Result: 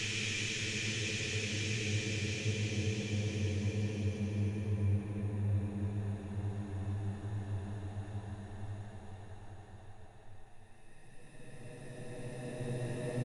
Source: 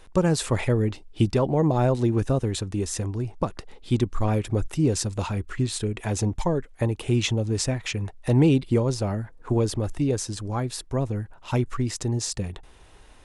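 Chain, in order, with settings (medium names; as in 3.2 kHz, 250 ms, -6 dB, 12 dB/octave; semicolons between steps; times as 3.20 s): Paulstretch 38×, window 0.25 s, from 7.89 s; frequency-shifting echo 151 ms, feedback 63%, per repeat +110 Hz, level -21 dB; trim -7 dB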